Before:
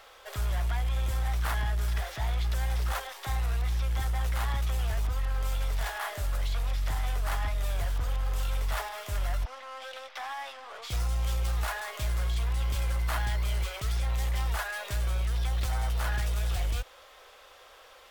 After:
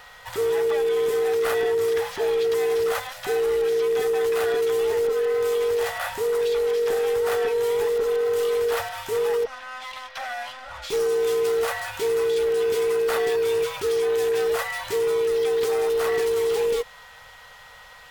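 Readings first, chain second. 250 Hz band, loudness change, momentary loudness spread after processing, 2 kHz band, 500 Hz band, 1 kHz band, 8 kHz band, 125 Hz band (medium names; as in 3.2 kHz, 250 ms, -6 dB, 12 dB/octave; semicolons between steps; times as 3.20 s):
+6.5 dB, +8.5 dB, 6 LU, +6.0 dB, +25.0 dB, +5.5 dB, +5.5 dB, under -15 dB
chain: every band turned upside down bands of 500 Hz; whistle 1.9 kHz -54 dBFS; trim +5.5 dB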